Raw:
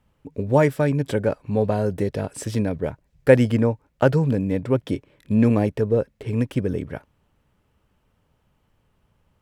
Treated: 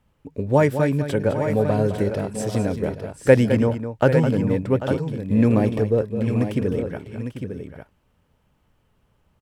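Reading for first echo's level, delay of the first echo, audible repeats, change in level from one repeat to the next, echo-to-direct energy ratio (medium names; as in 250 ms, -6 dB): -10.0 dB, 210 ms, 3, no regular repeats, -5.5 dB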